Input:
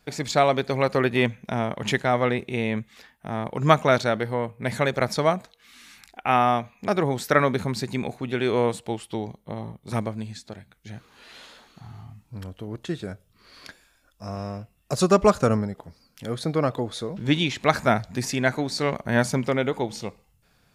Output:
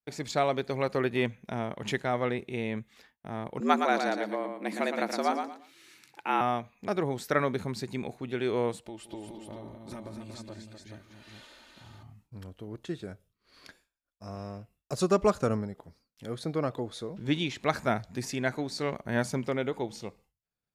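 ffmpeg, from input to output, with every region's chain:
-filter_complex "[0:a]asettb=1/sr,asplit=3[s0][s1][s2];[s0]atrim=end=3.604[s3];[s1]atrim=start=3.6:end=6.41,asetpts=PTS-STARTPTS,afade=t=in:d=0.004:c=qsin,afade=t=out:st=2.806:d=0.004:c=qsin,afreqshift=92,aecho=1:1:115|230|345:0.501|0.125|0.0313,atrim=end_sample=123921[s4];[s2]atrim=start=6.406[s5];[s3][s4]acrossfade=d=0.004:c1=hsin:c2=qsin[s6];[s6][s5]acrossfade=d=0.004:c1=qsin:c2=hsin,asettb=1/sr,asplit=3[s7][s8][s9];[s7]atrim=end=8.844[s10];[s8]atrim=start=8.84:end=12.03,asetpts=PTS-STARTPTS,afade=t=in:d=0.004:c=qsin,afade=t=out:st=3.186:d=0.004:c=qsin,acompressor=threshold=0.0316:ratio=10:attack=3.2:release=140:knee=1:detection=peak,aecho=1:1:3.3:0.51,atrim=end_sample=140679,aecho=1:1:170|205|229|242|419:0.178|0.112|0.141|0.447|0.531,atrim=end_sample=140679[s11];[s9]atrim=start=12.026[s12];[s10][s11]acrossfade=d=0.004:c1=hsin:c2=qsin[s13];[s13][s12]acrossfade=d=0.004:c1=qsin:c2=hsin,agate=range=0.0224:threshold=0.00398:ratio=3:detection=peak,equalizer=f=360:t=o:w=0.77:g=3,volume=0.398"

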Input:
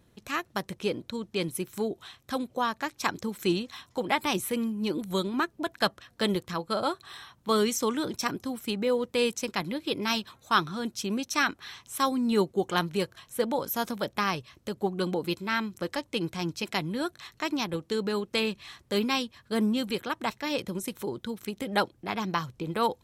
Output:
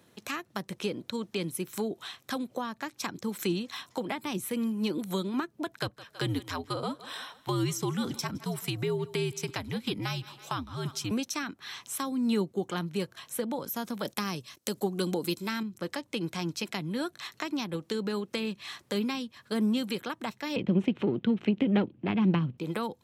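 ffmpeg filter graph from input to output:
-filter_complex "[0:a]asettb=1/sr,asplit=3[s0][s1][s2];[s0]atrim=end=5.754[s3];[s1]atrim=start=5.75:end=11.11,asetpts=PTS-STARTPTS,afade=t=in:d=0.004:c=qsin,afade=t=out:st=5.356:d=0.004:c=qsin,afreqshift=-84,aecho=1:1:162|324|486:0.0841|0.0345|0.0141,atrim=end_sample=236376[s4];[s2]atrim=start=11.106[s5];[s3][s4]acrossfade=d=0.004:c1=hsin:c2=qsin[s6];[s6][s5]acrossfade=d=0.004:c1=qsin:c2=hsin,asettb=1/sr,asplit=3[s7][s8][s9];[s7]atrim=end=14.054[s10];[s8]atrim=start=14.05:end=15.63,asetpts=PTS-STARTPTS,afade=t=in:d=0.004:c=qsin,afade=t=out:st=1.576:d=0.004:c=qsin,bass=f=250:g=-7,treble=f=4000:g=11,acontrast=63,agate=range=0.141:threshold=0.00355:ratio=16:release=100:detection=peak[s11];[s9]atrim=start=15.626[s12];[s10][s11]acrossfade=d=0.004:c1=hsin:c2=qsin[s13];[s13][s12]acrossfade=d=0.004:c1=qsin:c2=hsin,asettb=1/sr,asplit=3[s14][s15][s16];[s14]atrim=end=20.564[s17];[s15]atrim=start=20.56:end=22.58,asetpts=PTS-STARTPTS,afade=t=in:d=0.004:c=qsin,afade=t=out:st=2.016:d=0.004:c=qsin,aeval=exprs='if(lt(val(0),0),0.447*val(0),val(0))':c=same,lowpass=f=2800:t=q:w=3.6,equalizer=f=230:w=0.31:g=14[s18];[s16]atrim=start=22.576[s19];[s17][s18]acrossfade=d=0.004:c1=hsin:c2=qsin[s20];[s20][s19]acrossfade=d=0.004:c1=qsin:c2=hsin,lowshelf=f=350:g=-5.5,acrossover=split=270[s21][s22];[s22]acompressor=threshold=0.0126:ratio=10[s23];[s21][s23]amix=inputs=2:normalize=0,highpass=130,volume=1.88"

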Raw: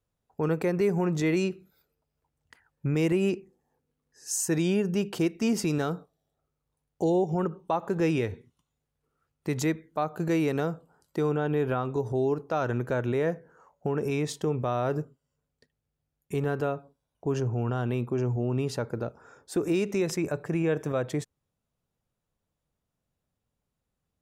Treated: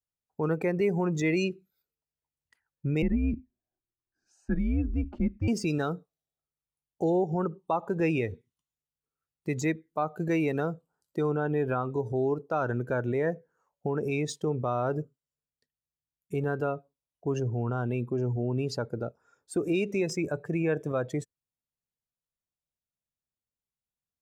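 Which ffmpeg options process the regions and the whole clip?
-filter_complex "[0:a]asettb=1/sr,asplit=3[s0][s1][s2];[s0]atrim=end=3.024[s3];[s1]atrim=start=3.02:end=5.48,asetpts=PTS-STARTPTS,afade=t=in:d=0.004:c=qsin,afade=t=out:st=2.456:d=0.004:c=qsin,lowpass=1600,afreqshift=-130[s4];[s2]atrim=start=5.476[s5];[s3][s4]acrossfade=d=0.004:c1=hsin:c2=qsin[s6];[s6][s5]acrossfade=d=0.004:c1=qsin:c2=hsin,afftdn=nr=17:nf=-36,deesser=0.95,highshelf=f=2300:g=9.5,volume=0.841"

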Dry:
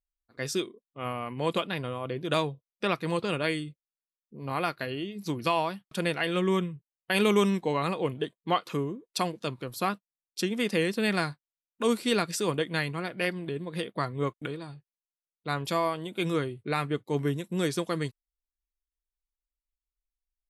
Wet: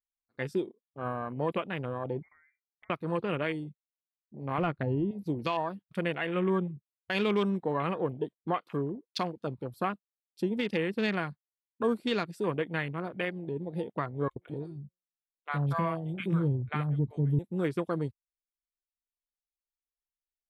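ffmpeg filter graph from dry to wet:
-filter_complex "[0:a]asettb=1/sr,asplit=3[s0][s1][s2];[s0]atrim=end=2.224[s3];[s1]atrim=start=2.22:end=2.9,asetpts=PTS-STARTPTS,afade=t=in:d=0.004:c=qsin,afade=t=out:st=0.676:d=0.004:c=qsin,highpass=480,acompressor=threshold=0.00501:ratio=4:attack=3.2:release=140:knee=1:detection=peak,lowpass=f=2100:t=q:w=0.5098,lowpass=f=2100:t=q:w=0.6013,lowpass=f=2100:t=q:w=0.9,lowpass=f=2100:t=q:w=2.563,afreqshift=-2500[s4];[s2]atrim=start=2.896[s5];[s3][s4]acrossfade=d=0.004:c1=hsin:c2=qsin[s6];[s6][s5]acrossfade=d=0.004:c1=qsin:c2=hsin,asettb=1/sr,asplit=3[s7][s8][s9];[s7]atrim=end=4.584[s10];[s8]atrim=start=4.58:end=5.11,asetpts=PTS-STARTPTS,afade=t=in:d=0.004:c=qsin,afade=t=out:st=0.526:d=0.004:c=qsin,aemphasis=mode=reproduction:type=riaa,aeval=exprs='0.126*(abs(mod(val(0)/0.126+3,4)-2)-1)':c=same[s11];[s9]atrim=start=5.106[s12];[s10][s11]acrossfade=d=0.004:c1=hsin:c2=qsin[s13];[s13][s12]acrossfade=d=0.004:c1=qsin:c2=hsin,asettb=1/sr,asplit=3[s14][s15][s16];[s14]atrim=end=14.284[s17];[s15]atrim=start=14.28:end=17.39,asetpts=PTS-STARTPTS,afade=t=in:d=0.004:c=qsin,afade=t=out:st=3.106:d=0.004:c=qsin,bandreject=f=179.5:t=h:w=4,bandreject=f=359:t=h:w=4,bandreject=f=538.5:t=h:w=4,acrossover=split=670|2900[s18][s19][s20];[s20]adelay=30[s21];[s18]adelay=80[s22];[s22][s19][s21]amix=inputs=3:normalize=0,atrim=end_sample=137151,asubboost=boost=10.5:cutoff=140[s23];[s16]atrim=start=17.386[s24];[s17][s23]acrossfade=d=0.004:c1=hsin:c2=qsin[s25];[s25][s24]acrossfade=d=0.004:c1=qsin:c2=hsin,afwtdn=0.0158,equalizer=f=6500:t=o:w=0.57:g=-8,alimiter=limit=0.112:level=0:latency=1:release=394"

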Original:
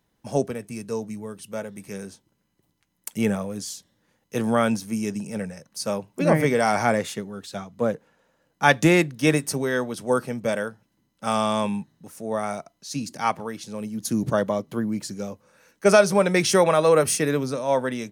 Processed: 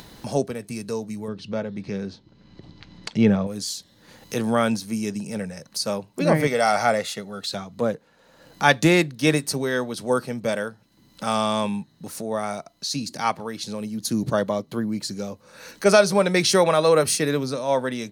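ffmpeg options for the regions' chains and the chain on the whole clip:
-filter_complex "[0:a]asettb=1/sr,asplit=3[s0][s1][s2];[s0]atrim=end=1.284[s3];[s1]atrim=start=1.28:end=3.47,asetpts=PTS-STARTPTS,afade=t=in:d=0.004:c=qsin,afade=t=out:st=2.186:d=0.004:c=qsin,lowpass=f=5000:w=0.5412,lowpass=f=5000:w=1.3066,lowshelf=f=460:g=7.5[s4];[s2]atrim=start=3.466[s5];[s3][s4]acrossfade=d=0.004:c1=hsin:c2=qsin[s6];[s6][s5]acrossfade=d=0.004:c1=qsin:c2=hsin,asettb=1/sr,asplit=3[s7][s8][s9];[s7]atrim=end=6.474[s10];[s8]atrim=start=6.47:end=7.48,asetpts=PTS-STARTPTS,afade=t=in:d=0.004:c=qsin,afade=t=out:st=1.006:d=0.004:c=qsin,highpass=f=250:p=1,aecho=1:1:1.5:0.45,atrim=end_sample=44541[s11];[s9]atrim=start=7.476[s12];[s10][s11]acrossfade=d=0.004:c1=hsin:c2=qsin[s13];[s13][s12]acrossfade=d=0.004:c1=qsin:c2=hsin,acompressor=mode=upward:threshold=0.0501:ratio=2.5,equalizer=f=4200:w=3.3:g=9"

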